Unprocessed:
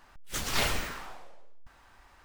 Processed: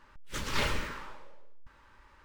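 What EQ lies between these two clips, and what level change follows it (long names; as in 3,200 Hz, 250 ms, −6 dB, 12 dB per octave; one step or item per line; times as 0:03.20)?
Butterworth band-reject 720 Hz, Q 4.2
low-pass filter 3,100 Hz 6 dB per octave
0.0 dB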